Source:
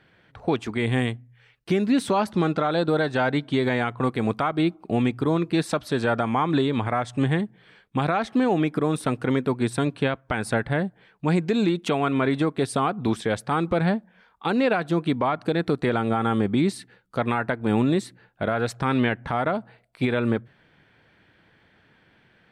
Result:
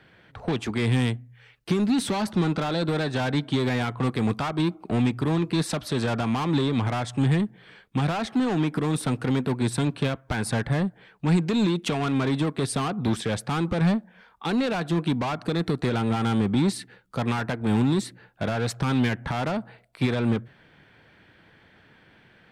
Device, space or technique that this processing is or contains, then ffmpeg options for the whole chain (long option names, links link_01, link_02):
one-band saturation: -filter_complex "[0:a]acrossover=split=210|3200[link_01][link_02][link_03];[link_02]asoftclip=type=tanh:threshold=-29.5dB[link_04];[link_01][link_04][link_03]amix=inputs=3:normalize=0,volume=3.5dB"